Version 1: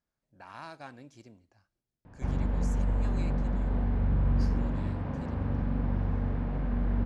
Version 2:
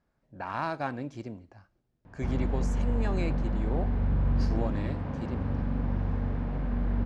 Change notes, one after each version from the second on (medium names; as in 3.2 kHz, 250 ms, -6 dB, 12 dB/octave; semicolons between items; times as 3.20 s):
speech: remove pre-emphasis filter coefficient 0.8; background: remove distance through air 54 m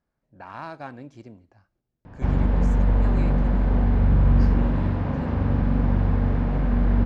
speech -4.5 dB; background +8.5 dB